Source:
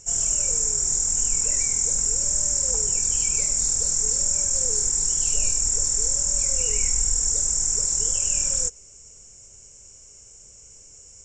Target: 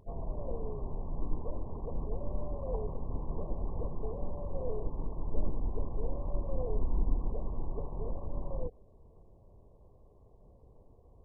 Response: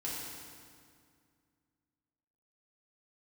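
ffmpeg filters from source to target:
-filter_complex "[0:a]asettb=1/sr,asplit=3[link_01][link_02][link_03];[link_01]atrim=end=3.104[link_04];[link_02]atrim=start=3.1:end=3.9,asetpts=PTS-STARTPTS,afade=type=in:duration=0.004:curve=qsin,afade=type=out:start_time=0.796:duration=0.004:curve=qsin,aeval=exprs='0.299*(cos(1*acos(clip(val(0)/0.299,-1,1)))-cos(1*PI/2))+0.015*(cos(5*acos(clip(val(0)/0.299,-1,1)))-cos(5*PI/2))+0.00596*(cos(6*acos(clip(val(0)/0.299,-1,1)))-cos(6*PI/2))+0.00376*(cos(8*acos(clip(val(0)/0.299,-1,1)))-cos(8*PI/2))':channel_layout=same[link_05];[link_03]atrim=start=3.896[link_06];[link_04][link_05]acrossfade=duration=0.004:curve1=hsin:curve2=qsin[link_07];[link_07][link_06]acrossfade=duration=0.004:curve1=qsin:curve2=hsin" -ar 24000 -c:a mp2 -b:a 8k

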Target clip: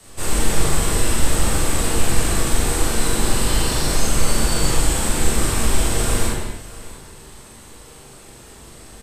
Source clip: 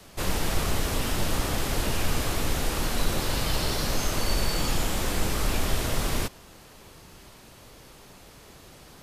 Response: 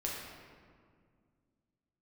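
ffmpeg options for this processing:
-filter_complex "[0:a]equalizer=frequency=8200:width_type=o:width=0.29:gain=15,asplit=2[link_01][link_02];[link_02]adelay=41,volume=-3dB[link_03];[link_01][link_03]amix=inputs=2:normalize=0,aecho=1:1:646:0.119[link_04];[1:a]atrim=start_sample=2205,afade=type=out:start_time=0.3:duration=0.01,atrim=end_sample=13671,asetrate=35280,aresample=44100[link_05];[link_04][link_05]afir=irnorm=-1:irlink=0"

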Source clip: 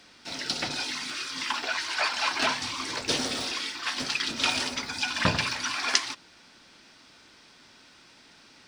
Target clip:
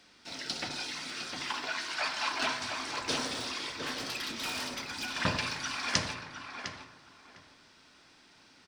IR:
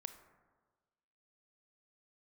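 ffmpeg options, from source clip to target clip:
-filter_complex "[0:a]asettb=1/sr,asplit=3[link_01][link_02][link_03];[link_01]atrim=end=3.744[link_04];[link_02]atrim=start=3.74:end=5.14,asetpts=PTS-STARTPTS,afade=type=in:duration=0.004:curve=qsin,afade=type=out:start_time=1.396:duration=0.004:curve=qsin,asoftclip=type=hard:threshold=-27dB[link_05];[link_03]atrim=start=5.136[link_06];[link_04][link_05]acrossfade=duration=0.004:curve1=hsin:curve2=qsin[link_07];[link_07][link_06]acrossfade=duration=0.004:curve1=qsin:curve2=hsin,asplit=2[link_08][link_09];[link_09]adelay=705,lowpass=frequency=1700:poles=1,volume=-4dB,asplit=2[link_10][link_11];[link_11]adelay=705,lowpass=frequency=1700:poles=1,volume=0.23,asplit=2[link_12][link_13];[link_13]adelay=705,lowpass=frequency=1700:poles=1,volume=0.23[link_14];[link_08][link_10][link_12][link_14]amix=inputs=4:normalize=0[link_15];[1:a]atrim=start_sample=2205[link_16];[link_15][link_16]afir=irnorm=-1:irlink=0,volume=-1.5dB"

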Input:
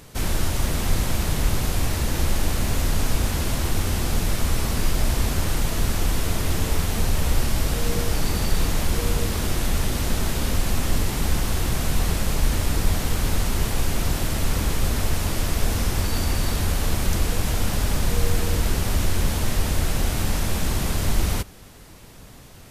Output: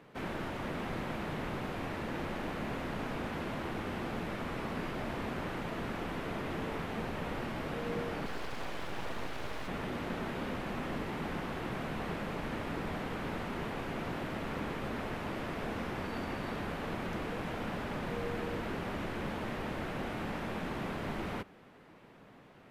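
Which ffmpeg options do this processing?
ffmpeg -i in.wav -filter_complex "[0:a]acrossover=split=150 2800:gain=0.0891 1 0.0631[link_01][link_02][link_03];[link_01][link_02][link_03]amix=inputs=3:normalize=0,asettb=1/sr,asplit=3[link_04][link_05][link_06];[link_04]atrim=end=8.264[link_07];[link_05]atrim=start=8.26:end=9.68,asetpts=PTS-STARTPTS,afade=type=in:duration=0.004:curve=qsin,afade=type=out:start_time=1.416:duration=0.004:curve=qsin,aeval=exprs='abs(val(0))':channel_layout=same[link_08];[link_06]atrim=start=9.676[link_09];[link_07][link_08]acrossfade=duration=0.004:curve1=hsin:curve2=qsin[link_10];[link_10][link_09]acrossfade=duration=0.004:curve1=qsin:curve2=hsin,volume=-6.5dB" out.wav

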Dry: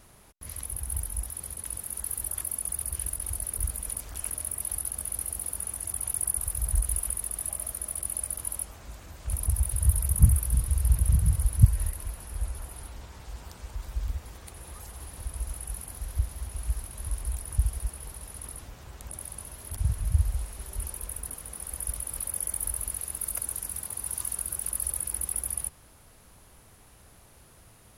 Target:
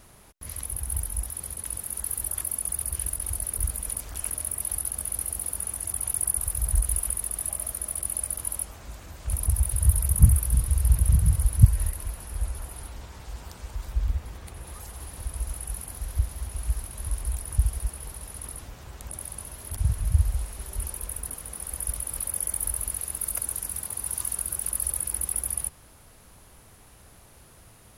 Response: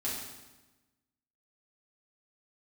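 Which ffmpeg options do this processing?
-filter_complex "[0:a]asettb=1/sr,asplit=3[link_01][link_02][link_03];[link_01]atrim=end=13.924[link_04];[link_02]atrim=start=13.92:end=14.67,asetpts=PTS-STARTPTS,afade=type=in:duration=0.004:curve=qsin,afade=type=out:start_time=0.746:duration=0.004:curve=qsin,bass=frequency=250:gain=3,treble=frequency=4000:gain=-4[link_05];[link_03]atrim=start=14.666[link_06];[link_04][link_05]acrossfade=duration=0.004:curve1=hsin:curve2=qsin[link_07];[link_07][link_06]acrossfade=duration=0.004:curve1=qsin:curve2=hsin,volume=2.5dB"

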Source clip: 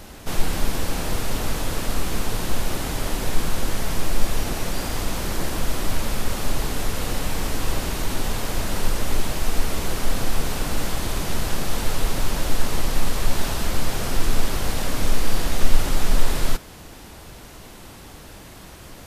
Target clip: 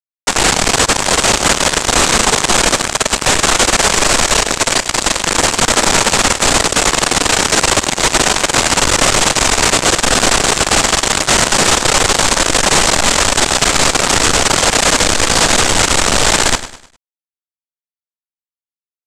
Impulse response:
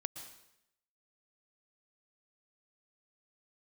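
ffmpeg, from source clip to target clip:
-filter_complex "[0:a]asettb=1/sr,asplit=3[link_01][link_02][link_03];[link_01]atrim=end=2.904[link_04];[link_02]atrim=start=2.9:end=5.24,asetpts=PTS-STARTPTS,afade=type=in:duration=0.004:curve=qsin,afade=type=out:start_time=2.336:duration=0.004:curve=qsin,equalizer=frequency=110:width=0.39:gain=-2.5[link_05];[link_03]atrim=start=5.236[link_06];[link_04][link_05]acrossfade=duration=0.004:curve1=hsin:curve2=qsin[link_07];[link_07][link_06]acrossfade=duration=0.004:curve1=qsin:curve2=hsin,acrusher=bits=2:mix=0:aa=0.5,asplit=2[link_08][link_09];[link_09]highpass=frequency=720:poles=1,volume=37dB,asoftclip=type=tanh:threshold=-0.5dB[link_10];[link_08][link_10]amix=inputs=2:normalize=0,lowpass=frequency=3800:poles=1,volume=-6dB,lowpass=frequency=7800:width_type=q:width=2.9,alimiter=limit=-5.5dB:level=0:latency=1:release=95,aecho=1:1:102|204|306|408:0.211|0.0824|0.0321|0.0125,volume=2.5dB"

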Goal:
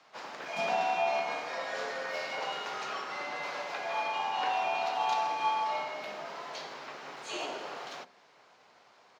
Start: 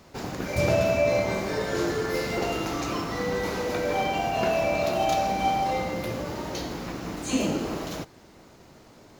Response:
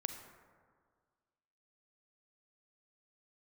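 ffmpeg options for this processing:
-filter_complex "[0:a]asplit=3[link_01][link_02][link_03];[link_02]asetrate=22050,aresample=44100,atempo=2,volume=-17dB[link_04];[link_03]asetrate=58866,aresample=44100,atempo=0.749154,volume=-11dB[link_05];[link_01][link_04][link_05]amix=inputs=3:normalize=0,acrossover=split=510 5500:gain=0.126 1 0.0891[link_06][link_07][link_08];[link_06][link_07][link_08]amix=inputs=3:normalize=0,afreqshift=92,bandreject=frequency=64.9:width_type=h:width=4,bandreject=frequency=129.8:width_type=h:width=4,bandreject=frequency=194.7:width_type=h:width=4,bandreject=frequency=259.6:width_type=h:width=4,bandreject=frequency=324.5:width_type=h:width=4,bandreject=frequency=389.4:width_type=h:width=4,bandreject=frequency=454.3:width_type=h:width=4,bandreject=frequency=519.2:width_type=h:width=4,bandreject=frequency=584.1:width_type=h:width=4,bandreject=frequency=649:width_type=h:width=4,bandreject=frequency=713.9:width_type=h:width=4,bandreject=frequency=778.8:width_type=h:width=4,volume=-4dB"

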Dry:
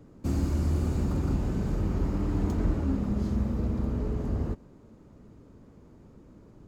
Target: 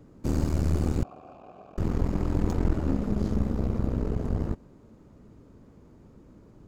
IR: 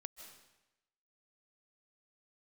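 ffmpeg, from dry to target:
-filter_complex "[0:a]aeval=exprs='0.178*(cos(1*acos(clip(val(0)/0.178,-1,1)))-cos(1*PI/2))+0.0447*(cos(4*acos(clip(val(0)/0.178,-1,1)))-cos(4*PI/2))':channel_layout=same,asettb=1/sr,asplit=3[link_01][link_02][link_03];[link_01]atrim=end=1.034[link_04];[link_02]atrim=start=1.03:end=1.78,asetpts=PTS-STARTPTS,afade=type=in:duration=0.004:curve=qsin,afade=type=out:start_time=0.746:duration=0.004:curve=qsin,asplit=3[link_05][link_06][link_07];[link_05]bandpass=frequency=730:width_type=q:width=8,volume=0dB[link_08];[link_06]bandpass=frequency=1090:width_type=q:width=8,volume=-6dB[link_09];[link_07]bandpass=frequency=2440:width_type=q:width=8,volume=-9dB[link_10];[link_08][link_09][link_10]amix=inputs=3:normalize=0[link_11];[link_03]atrim=start=1.776[link_12];[link_04][link_11]acrossfade=duration=0.004:curve1=hsin:curve2=qsin[link_13];[link_13][link_12]acrossfade=duration=0.004:curve1=qsin:curve2=hsin"

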